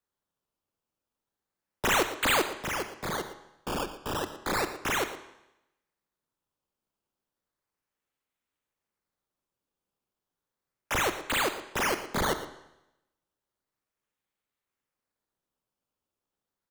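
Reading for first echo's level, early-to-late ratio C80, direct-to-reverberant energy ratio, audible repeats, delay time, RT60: -14.5 dB, 11.5 dB, 9.5 dB, 1, 116 ms, 0.90 s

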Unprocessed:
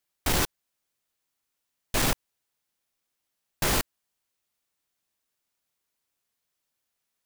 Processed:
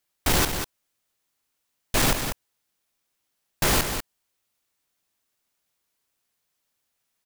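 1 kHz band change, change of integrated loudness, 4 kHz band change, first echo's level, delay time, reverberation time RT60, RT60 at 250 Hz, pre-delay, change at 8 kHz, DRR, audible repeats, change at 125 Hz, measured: +4.0 dB, +3.0 dB, +4.0 dB, -8.0 dB, 193 ms, no reverb, no reverb, no reverb, +4.0 dB, no reverb, 1, +4.0 dB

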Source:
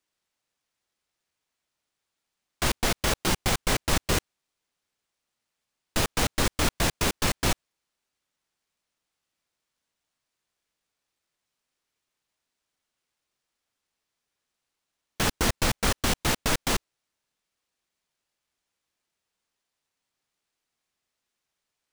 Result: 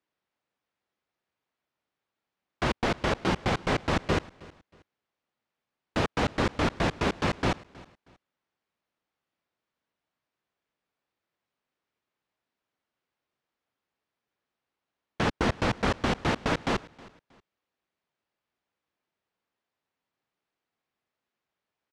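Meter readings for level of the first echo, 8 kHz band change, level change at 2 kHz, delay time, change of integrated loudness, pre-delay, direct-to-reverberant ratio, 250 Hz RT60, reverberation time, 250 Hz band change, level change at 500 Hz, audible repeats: -22.0 dB, -15.5 dB, -1.5 dB, 317 ms, -2.0 dB, no reverb, no reverb, no reverb, no reverb, +2.0 dB, +2.0 dB, 2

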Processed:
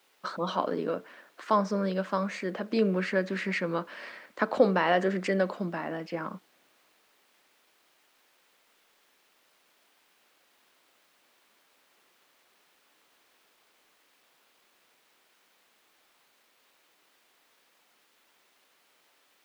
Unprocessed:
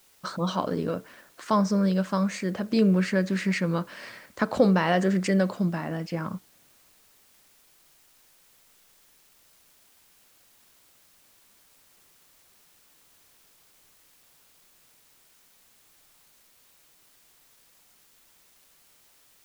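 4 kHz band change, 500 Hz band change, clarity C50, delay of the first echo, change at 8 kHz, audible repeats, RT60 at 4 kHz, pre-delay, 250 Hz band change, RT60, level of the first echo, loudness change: -3.5 dB, -0.5 dB, no reverb, no echo, no reading, no echo, no reverb, no reverb, -7.0 dB, no reverb, no echo, -3.5 dB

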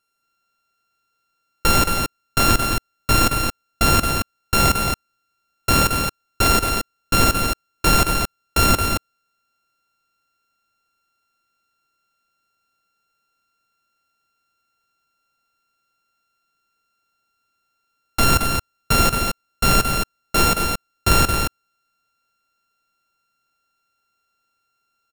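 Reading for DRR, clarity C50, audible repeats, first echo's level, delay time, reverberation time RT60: no reverb, no reverb, 2, -15.0 dB, 100 ms, no reverb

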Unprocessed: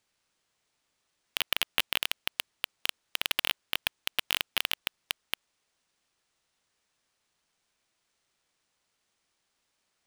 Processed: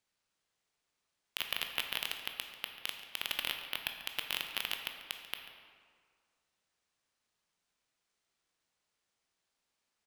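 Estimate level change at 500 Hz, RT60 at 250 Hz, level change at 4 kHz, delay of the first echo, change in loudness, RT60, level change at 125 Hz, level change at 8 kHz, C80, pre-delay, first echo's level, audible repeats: -6.0 dB, 1.9 s, -6.5 dB, 140 ms, -6.5 dB, 1.9 s, -6.0 dB, -7.0 dB, 7.0 dB, 15 ms, -16.0 dB, 1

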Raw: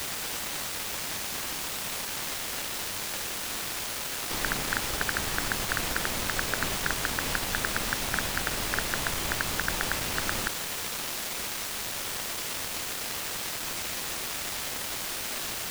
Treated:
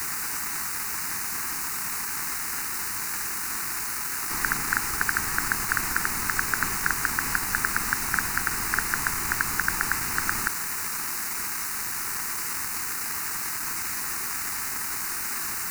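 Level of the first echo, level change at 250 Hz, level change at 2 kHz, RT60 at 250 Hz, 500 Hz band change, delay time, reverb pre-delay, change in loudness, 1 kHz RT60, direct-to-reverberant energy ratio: no echo, -1.0 dB, +4.5 dB, no reverb, -7.0 dB, no echo, no reverb, +3.5 dB, no reverb, no reverb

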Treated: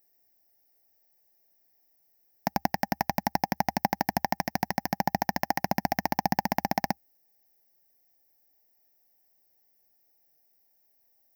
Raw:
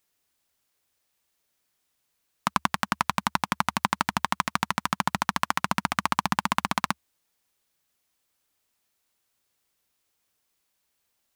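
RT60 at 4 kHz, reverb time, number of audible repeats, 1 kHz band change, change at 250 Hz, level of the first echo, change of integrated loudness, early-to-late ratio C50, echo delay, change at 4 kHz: no reverb, no reverb, no echo, -2.0 dB, +1.0 dB, no echo, -2.0 dB, no reverb, no echo, -6.5 dB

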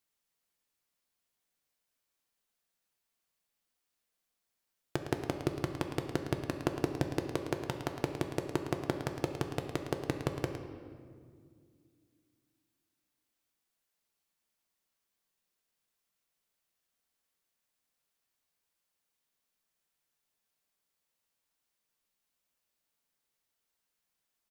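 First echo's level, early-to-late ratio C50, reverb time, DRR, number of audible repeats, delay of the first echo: -10.0 dB, 5.5 dB, 2.1 s, 4.0 dB, 1, 110 ms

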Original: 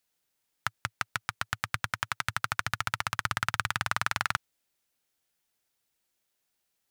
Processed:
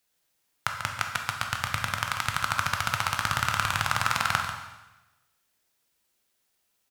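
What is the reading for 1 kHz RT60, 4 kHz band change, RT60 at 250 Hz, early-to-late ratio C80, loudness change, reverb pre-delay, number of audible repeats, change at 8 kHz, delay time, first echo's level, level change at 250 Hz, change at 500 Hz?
1.0 s, +5.0 dB, 1.0 s, 5.5 dB, +4.0 dB, 6 ms, 1, +5.0 dB, 141 ms, -9.0 dB, +5.0 dB, +5.5 dB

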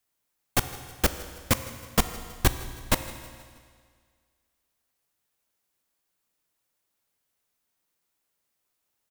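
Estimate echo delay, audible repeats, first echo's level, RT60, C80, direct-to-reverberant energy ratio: 159 ms, 3, -20.0 dB, 1.9 s, 11.5 dB, 9.5 dB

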